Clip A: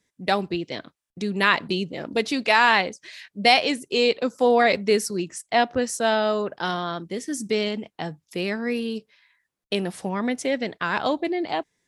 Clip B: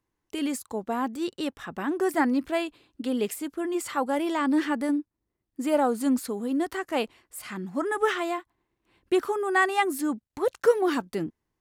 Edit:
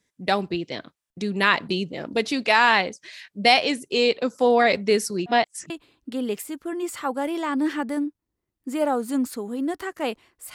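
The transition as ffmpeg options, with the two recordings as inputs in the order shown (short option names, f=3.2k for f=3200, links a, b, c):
-filter_complex "[0:a]apad=whole_dur=10.54,atrim=end=10.54,asplit=2[a][b];[a]atrim=end=5.262[c];[b]atrim=start=5.258:end=5.702,asetpts=PTS-STARTPTS,areverse[d];[1:a]atrim=start=2.618:end=7.46[e];[c][d]acrossfade=d=0.004:c1=hsin:c2=hsin[f];[f][e]acrossfade=d=0.004:c1=hsin:c2=hsin"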